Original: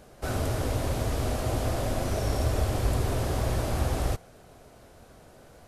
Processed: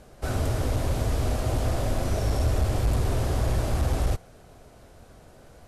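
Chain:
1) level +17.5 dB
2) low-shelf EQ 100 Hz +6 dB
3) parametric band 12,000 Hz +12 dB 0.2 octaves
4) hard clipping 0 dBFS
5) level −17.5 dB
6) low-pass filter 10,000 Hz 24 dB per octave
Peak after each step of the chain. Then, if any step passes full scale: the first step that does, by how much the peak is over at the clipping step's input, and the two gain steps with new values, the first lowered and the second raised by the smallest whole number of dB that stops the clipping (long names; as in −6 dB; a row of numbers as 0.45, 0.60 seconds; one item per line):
+4.0, +7.0, +7.0, 0.0, −17.5, −17.0 dBFS
step 1, 7.0 dB
step 1 +10.5 dB, step 5 −10.5 dB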